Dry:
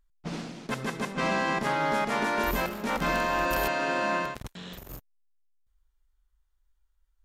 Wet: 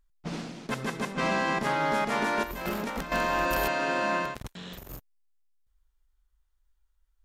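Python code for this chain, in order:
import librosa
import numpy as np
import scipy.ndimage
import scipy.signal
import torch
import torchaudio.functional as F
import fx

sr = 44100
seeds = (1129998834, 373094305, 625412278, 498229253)

y = fx.over_compress(x, sr, threshold_db=-32.0, ratio=-0.5, at=(2.43, 3.12))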